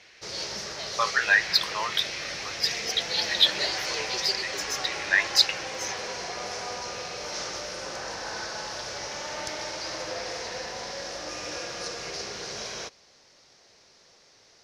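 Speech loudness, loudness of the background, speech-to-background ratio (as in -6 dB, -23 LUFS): -25.5 LUFS, -32.5 LUFS, 7.0 dB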